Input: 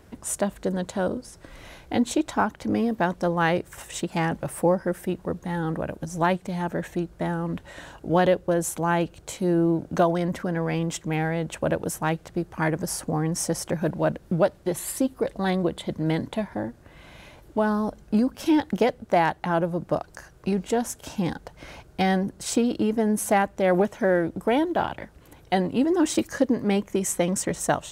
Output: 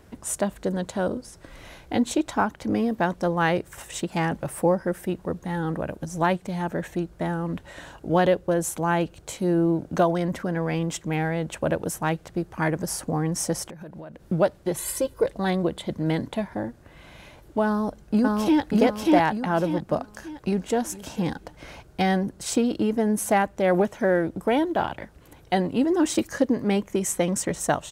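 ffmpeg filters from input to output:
-filter_complex "[0:a]asettb=1/sr,asplit=3[s0][s1][s2];[s0]atrim=end=13.664[s3];[s1]atrim=start=13.66:end=14.23,asetpts=PTS-STARTPTS,afade=t=in:d=0.004:c=qsin,afade=t=out:st=0.566:d=0.004:c=qsin,acompressor=threshold=0.0158:ratio=16:attack=3.2:release=140:knee=1:detection=peak[s4];[s2]atrim=start=14.226[s5];[s3][s4]acrossfade=d=0.004:c1=hsin:c2=qsin[s6];[s6][s5]acrossfade=d=0.004:c1=qsin:c2=hsin,asettb=1/sr,asplit=3[s7][s8][s9];[s7]atrim=end=14.784[s10];[s8]atrim=start=14.78:end=15.26,asetpts=PTS-STARTPTS,afade=t=in:d=0.004:c=qsin,afade=t=out:st=0.476:d=0.004:c=qsin,aecho=1:1:2:0.74,atrim=end_sample=21168[s11];[s9]atrim=start=15.256[s12];[s10][s11]acrossfade=d=0.004:c1=hsin:c2=qsin[s13];[s13][s12]acrossfade=d=0.004:c1=qsin:c2=hsin,asplit=2[s14][s15];[s15]afade=t=in:st=17.65:d=0.01,afade=t=out:st=18.62:d=0.01,aecho=0:1:590|1180|1770|2360|2950:1|0.35|0.1225|0.042875|0.0150062[s16];[s14][s16]amix=inputs=2:normalize=0,asplit=2[s17][s18];[s18]afade=t=in:st=20.06:d=0.01,afade=t=out:st=20.78:d=0.01,aecho=0:1:450|900:0.125893|0.0188839[s19];[s17][s19]amix=inputs=2:normalize=0"

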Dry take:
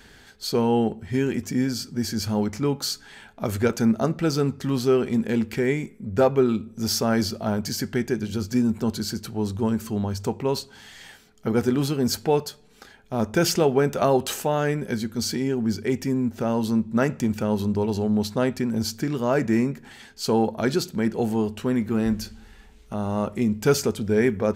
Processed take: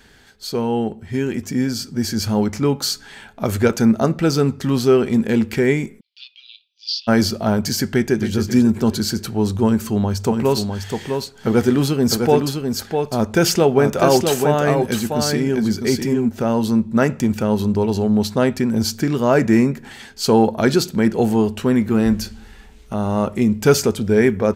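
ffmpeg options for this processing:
-filter_complex "[0:a]asplit=3[s0][s1][s2];[s0]afade=t=out:st=5.99:d=0.02[s3];[s1]asuperpass=centerf=3700:order=8:qfactor=1.7,afade=t=in:st=5.99:d=0.02,afade=t=out:st=7.07:d=0.02[s4];[s2]afade=t=in:st=7.07:d=0.02[s5];[s3][s4][s5]amix=inputs=3:normalize=0,asplit=2[s6][s7];[s7]afade=t=in:st=7.93:d=0.01,afade=t=out:st=8.35:d=0.01,aecho=0:1:270|540|810|1080|1350:0.334965|0.150734|0.0678305|0.0305237|0.0137357[s8];[s6][s8]amix=inputs=2:normalize=0,asplit=3[s9][s10][s11];[s9]afade=t=out:st=10.3:d=0.02[s12];[s10]aecho=1:1:654:0.562,afade=t=in:st=10.3:d=0.02,afade=t=out:st=16.28:d=0.02[s13];[s11]afade=t=in:st=16.28:d=0.02[s14];[s12][s13][s14]amix=inputs=3:normalize=0,dynaudnorm=f=110:g=31:m=2.66"

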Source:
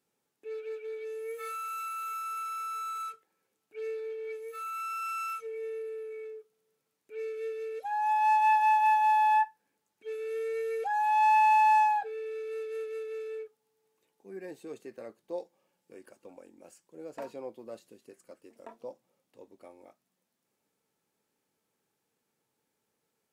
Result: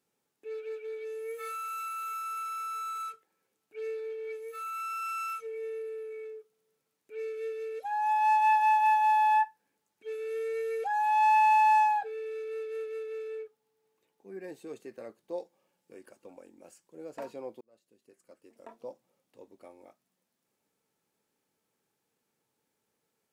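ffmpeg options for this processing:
-filter_complex "[0:a]asettb=1/sr,asplit=3[s0][s1][s2];[s0]atrim=end=12.444[s3];[s1]atrim=start=12.44:end=14.44,asetpts=PTS-STARTPTS,afade=t=in:d=0.004:c=qsin,afade=t=out:st=1.996:d=0.004:c=qsin,equalizer=f=9600:w=0.48:g=-4[s4];[s2]atrim=start=14.436[s5];[s3][s4]acrossfade=d=0.004:c1=hsin:c2=qsin[s6];[s6][s5]acrossfade=d=0.004:c1=qsin:c2=hsin,asplit=2[s7][s8];[s7]atrim=end=17.61,asetpts=PTS-STARTPTS,afade=t=out:st=17.606:d=0.004:c=hsin[s9];[s8]atrim=start=17.61,asetpts=PTS-STARTPTS,afade=t=in:d=1.28[s10];[s9][s10]concat=n=2:v=0:a=1"

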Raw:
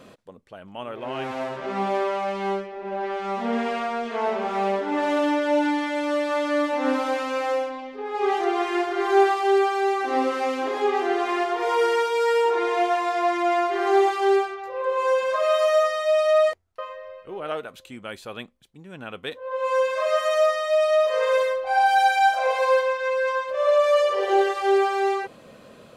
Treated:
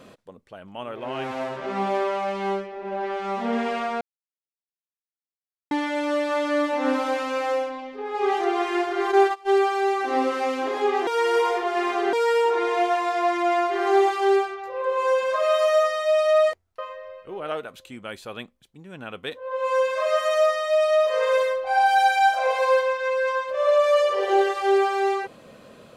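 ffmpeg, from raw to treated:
-filter_complex "[0:a]asplit=3[s0][s1][s2];[s0]afade=t=out:st=9.11:d=0.02[s3];[s1]agate=range=0.0794:threshold=0.0891:ratio=16:release=100:detection=peak,afade=t=in:st=9.11:d=0.02,afade=t=out:st=9.54:d=0.02[s4];[s2]afade=t=in:st=9.54:d=0.02[s5];[s3][s4][s5]amix=inputs=3:normalize=0,asplit=5[s6][s7][s8][s9][s10];[s6]atrim=end=4.01,asetpts=PTS-STARTPTS,afade=t=out:st=4.006:d=0.004:c=hsin[s11];[s7]atrim=start=4.01:end=5.71,asetpts=PTS-STARTPTS,volume=0[s12];[s8]atrim=start=5.71:end=11.072,asetpts=PTS-STARTPTS,afade=t=in:d=0.004:c=hsin[s13];[s9]atrim=start=11.068:end=12.132,asetpts=PTS-STARTPTS,areverse[s14];[s10]atrim=start=12.128[s15];[s11][s12][s13]concat=n=3:v=0:a=1[s16];[s16][s14]acrossfade=d=0.004:c1=hsin:c2=hsin[s17];[s17][s15]acrossfade=d=0.004:c1=hsin:c2=hsin"

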